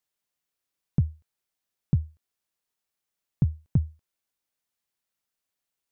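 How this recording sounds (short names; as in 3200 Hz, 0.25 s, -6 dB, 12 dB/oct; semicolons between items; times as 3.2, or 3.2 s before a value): noise floor -86 dBFS; spectral tilt -16.0 dB/oct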